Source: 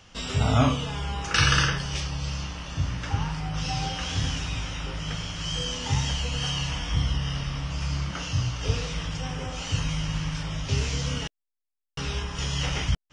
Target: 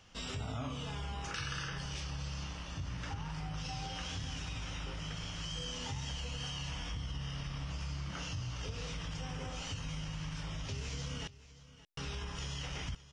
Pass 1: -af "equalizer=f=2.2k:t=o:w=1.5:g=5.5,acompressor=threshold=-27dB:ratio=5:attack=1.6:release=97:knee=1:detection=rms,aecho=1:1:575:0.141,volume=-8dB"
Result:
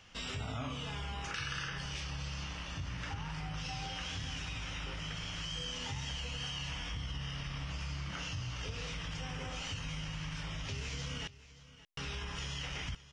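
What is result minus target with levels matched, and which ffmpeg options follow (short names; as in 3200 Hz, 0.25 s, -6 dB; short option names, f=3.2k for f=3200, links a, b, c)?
2000 Hz band +2.5 dB
-af "acompressor=threshold=-27dB:ratio=5:attack=1.6:release=97:knee=1:detection=rms,aecho=1:1:575:0.141,volume=-8dB"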